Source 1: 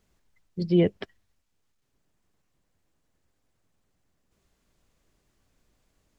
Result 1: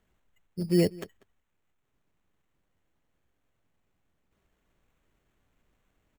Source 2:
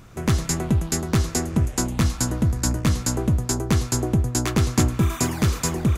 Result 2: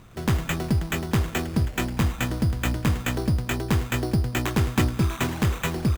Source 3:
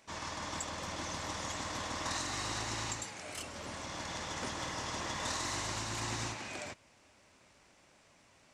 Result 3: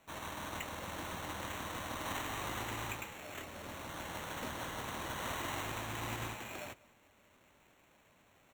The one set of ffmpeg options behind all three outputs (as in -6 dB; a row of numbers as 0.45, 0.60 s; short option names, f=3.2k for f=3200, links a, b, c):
-filter_complex "[0:a]acrusher=samples=9:mix=1:aa=0.000001,asplit=2[a][b];[b]adelay=192.4,volume=-22dB,highshelf=f=4k:g=-4.33[c];[a][c]amix=inputs=2:normalize=0,volume=-2.5dB"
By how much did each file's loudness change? -2.5, -2.5, -3.0 LU